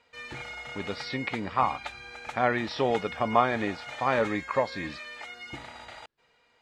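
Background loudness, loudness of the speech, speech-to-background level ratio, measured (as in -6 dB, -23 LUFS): -40.0 LUFS, -28.5 LUFS, 11.5 dB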